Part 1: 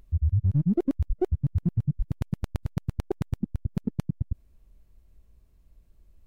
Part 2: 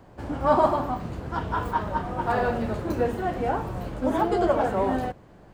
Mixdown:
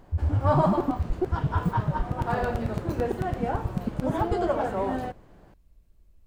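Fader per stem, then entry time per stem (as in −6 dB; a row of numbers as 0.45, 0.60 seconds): −1.0, −3.5 decibels; 0.00, 0.00 seconds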